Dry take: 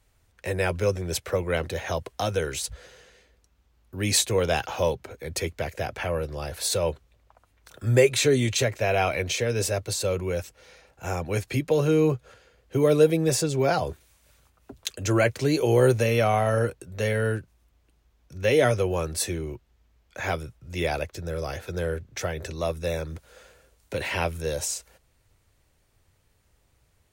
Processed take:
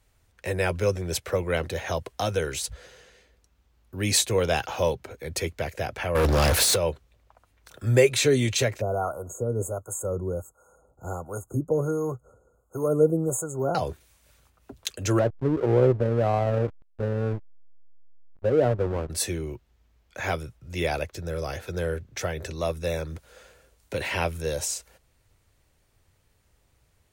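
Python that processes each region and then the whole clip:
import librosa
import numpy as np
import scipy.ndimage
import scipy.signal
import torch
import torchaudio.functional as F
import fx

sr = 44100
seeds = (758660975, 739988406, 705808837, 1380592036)

y = fx.chain(x, sr, fx.peak_eq(hz=140.0, db=-7.5, octaves=0.21),
    fx.over_compress(threshold_db=-30.0, ratio=-0.5),
    fx.leveller(passes=5), at=(6.15, 6.76))
y = fx.chain(y, sr, fx.harmonic_tremolo(hz=1.4, depth_pct=70, crossover_hz=640.0),
    fx.brickwall_bandstop(low_hz=1500.0, high_hz=6400.0), at=(8.81, 13.75))
y = fx.chain(y, sr, fx.lowpass(hz=1100.0, slope=24),
    fx.backlash(play_db=-25.0), at=(15.19, 19.1))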